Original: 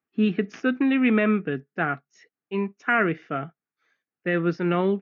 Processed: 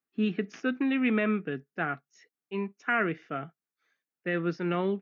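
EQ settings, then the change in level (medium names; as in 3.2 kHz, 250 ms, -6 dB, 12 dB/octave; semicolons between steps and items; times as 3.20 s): high-pass 98 Hz; treble shelf 4.3 kHz +6 dB; -6.0 dB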